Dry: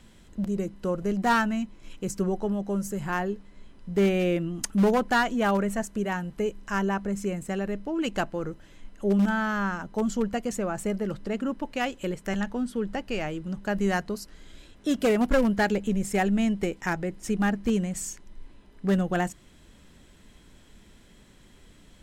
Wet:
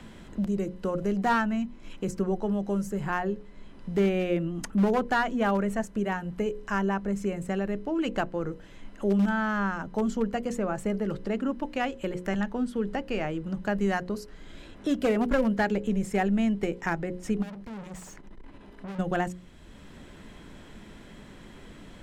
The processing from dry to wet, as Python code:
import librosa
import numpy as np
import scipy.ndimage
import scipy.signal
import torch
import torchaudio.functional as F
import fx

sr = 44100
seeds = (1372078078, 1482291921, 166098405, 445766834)

y = fx.tube_stage(x, sr, drive_db=41.0, bias=0.45, at=(17.41, 18.98), fade=0.02)
y = fx.high_shelf(y, sr, hz=4100.0, db=-9.0)
y = fx.hum_notches(y, sr, base_hz=60, count=9)
y = fx.band_squash(y, sr, depth_pct=40)